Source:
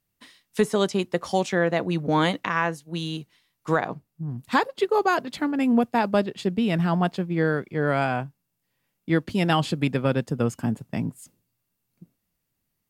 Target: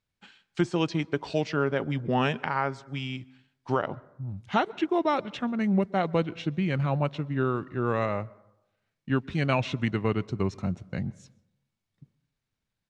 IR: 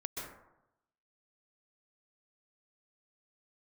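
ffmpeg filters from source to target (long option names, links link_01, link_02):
-filter_complex "[0:a]lowpass=5400,highshelf=frequency=2700:gain=4,asetrate=36028,aresample=44100,atempo=1.22405,asplit=2[link_01][link_02];[1:a]atrim=start_sample=2205[link_03];[link_02][link_03]afir=irnorm=-1:irlink=0,volume=-22dB[link_04];[link_01][link_04]amix=inputs=2:normalize=0,volume=-4.5dB"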